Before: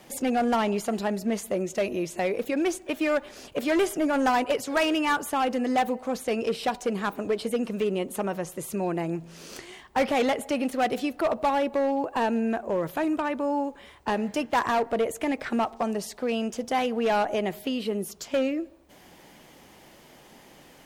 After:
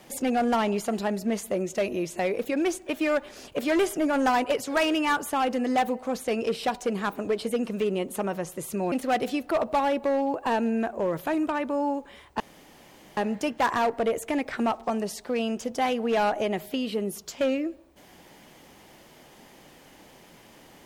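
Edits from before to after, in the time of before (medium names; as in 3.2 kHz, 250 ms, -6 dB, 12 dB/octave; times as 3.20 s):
8.92–10.62 s: delete
14.10 s: insert room tone 0.77 s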